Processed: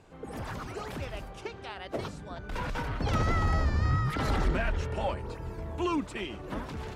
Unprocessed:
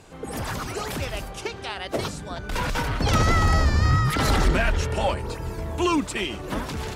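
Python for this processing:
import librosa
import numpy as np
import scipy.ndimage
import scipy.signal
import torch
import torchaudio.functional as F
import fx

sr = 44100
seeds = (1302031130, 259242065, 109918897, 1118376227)

y = fx.high_shelf(x, sr, hz=3900.0, db=-11.0)
y = F.gain(torch.from_numpy(y), -7.0).numpy()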